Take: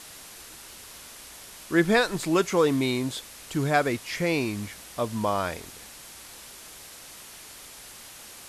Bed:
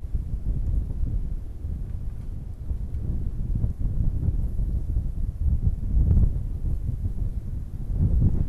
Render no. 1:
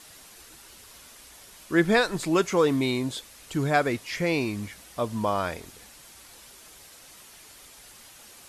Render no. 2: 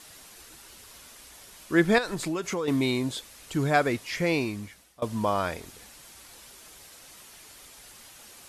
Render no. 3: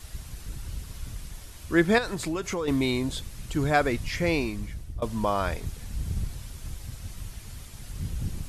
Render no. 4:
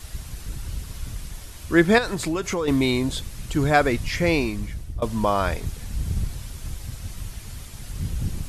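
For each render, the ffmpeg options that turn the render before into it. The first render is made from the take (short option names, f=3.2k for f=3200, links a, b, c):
-af "afftdn=nr=6:nf=-46"
-filter_complex "[0:a]asettb=1/sr,asplit=3[a][b][c];[a]atrim=end=1.984[d];[b]atrim=start=1.98:end=2.68,asetpts=PTS-STARTPTS,afade=t=in:d=0.004:c=qsin,afade=t=out:st=0.696:d=0.004:c=qsin,acompressor=threshold=-25dB:ratio=12:attack=3.2:release=140:knee=1:detection=peak[e];[c]atrim=start=2.676[f];[d][e]acrossfade=d=0.004:c1=hsin:c2=qsin[g];[g][f]acrossfade=d=0.004:c1=qsin:c2=hsin,asplit=2[h][i];[h]atrim=end=5.02,asetpts=PTS-STARTPTS,afade=t=out:st=4.34:d=0.68:silence=0.0794328[j];[i]atrim=start=5.02,asetpts=PTS-STARTPTS,afade=t=in:d=0.004:c=hsin:silence=0.0794328[k];[j][k]concat=n=2:v=0:a=1"
-filter_complex "[1:a]volume=-11dB[a];[0:a][a]amix=inputs=2:normalize=0"
-af "volume=4.5dB"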